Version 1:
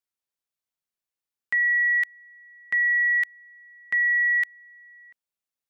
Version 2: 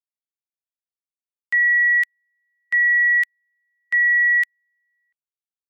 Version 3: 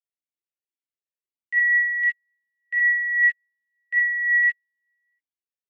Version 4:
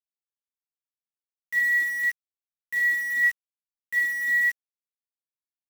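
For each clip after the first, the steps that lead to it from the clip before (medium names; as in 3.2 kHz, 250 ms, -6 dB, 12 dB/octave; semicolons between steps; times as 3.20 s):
treble shelf 2.2 kHz +11.5 dB; upward expansion 2.5:1, over -34 dBFS
gated-style reverb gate 90 ms rising, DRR -5.5 dB; talking filter e-i 1.8 Hz
bit crusher 6-bit; trim -3.5 dB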